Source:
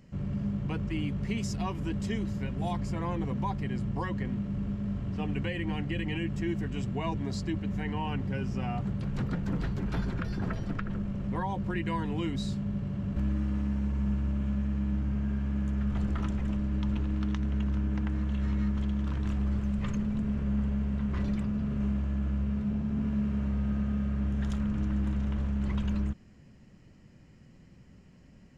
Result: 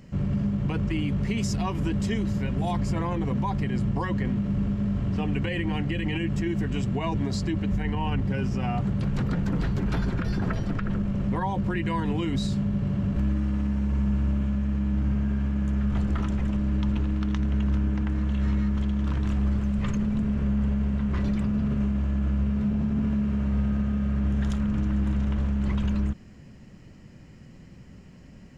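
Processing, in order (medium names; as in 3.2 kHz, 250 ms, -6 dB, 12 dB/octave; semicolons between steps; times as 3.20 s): 7.72–8.26 s: bass shelf 70 Hz +10.5 dB; peak limiter -26 dBFS, peak gain reduction 7.5 dB; trim +7.5 dB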